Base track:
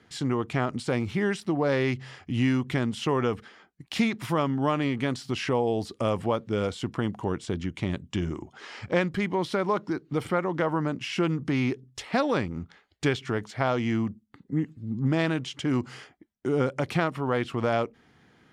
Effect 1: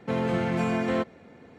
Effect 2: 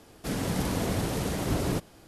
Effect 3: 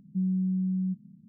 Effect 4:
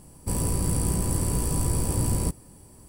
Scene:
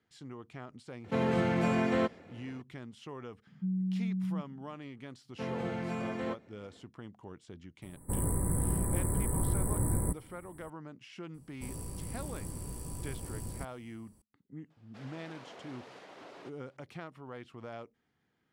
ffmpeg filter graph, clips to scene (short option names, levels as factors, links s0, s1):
-filter_complex "[1:a]asplit=2[s0][s1];[4:a]asplit=2[s2][s3];[0:a]volume=0.112[s4];[3:a]equalizer=f=120:t=o:w=0.77:g=7[s5];[s2]asuperstop=centerf=4200:order=20:qfactor=0.73[s6];[2:a]highpass=540,lowpass=3400[s7];[s0]atrim=end=1.58,asetpts=PTS-STARTPTS,volume=0.75,afade=t=in:d=0.004:c=hsin,afade=t=out:st=1.576:d=0.004:c=hsin,adelay=1040[s8];[s5]atrim=end=1.28,asetpts=PTS-STARTPTS,volume=0.447,afade=t=in:d=0.004:c=hsin,afade=t=out:st=1.276:d=0.004:c=hsin,adelay=3470[s9];[s1]atrim=end=1.58,asetpts=PTS-STARTPTS,volume=0.316,afade=t=in:d=0.1,afade=t=out:st=1.48:d=0.1,adelay=5310[s10];[s6]atrim=end=2.88,asetpts=PTS-STARTPTS,volume=0.531,afade=t=in:d=0.004:c=hsin,afade=t=out:st=2.876:d=0.004:c=hsin,adelay=7820[s11];[s3]atrim=end=2.88,asetpts=PTS-STARTPTS,volume=0.158,afade=t=in:d=0.004:c=hsin,afade=t=out:st=2.876:d=0.004:c=hsin,adelay=11340[s12];[s7]atrim=end=2.07,asetpts=PTS-STARTPTS,volume=0.188,afade=t=in:d=0.004:c=hsin,afade=t=out:st=2.066:d=0.004:c=hsin,adelay=14700[s13];[s4][s8][s9][s10][s11][s12][s13]amix=inputs=7:normalize=0"